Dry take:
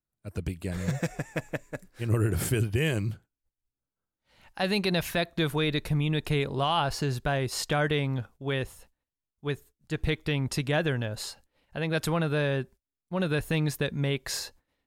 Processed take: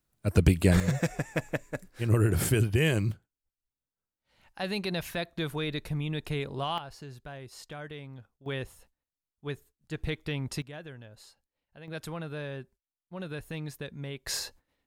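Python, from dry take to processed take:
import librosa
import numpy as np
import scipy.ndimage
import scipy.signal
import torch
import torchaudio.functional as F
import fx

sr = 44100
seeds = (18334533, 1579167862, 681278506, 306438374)

y = fx.gain(x, sr, db=fx.steps((0.0, 11.5), (0.8, 1.5), (3.12, -5.5), (6.78, -15.5), (8.46, -5.0), (10.62, -17.0), (11.88, -10.5), (14.27, 0.0)))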